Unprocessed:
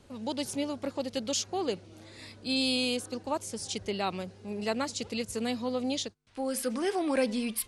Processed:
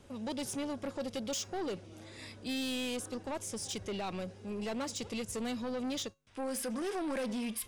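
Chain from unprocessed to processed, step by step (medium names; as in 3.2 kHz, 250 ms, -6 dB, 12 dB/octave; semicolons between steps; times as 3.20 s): band-stop 4.3 kHz, Q 8.5; in parallel at +1.5 dB: peak limiter -24.5 dBFS, peak gain reduction 8 dB; on the sum: saturation -25.5 dBFS, distortion -11 dB; feedback comb 550 Hz, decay 0.26 s, harmonics all, mix 40%; trim -2.5 dB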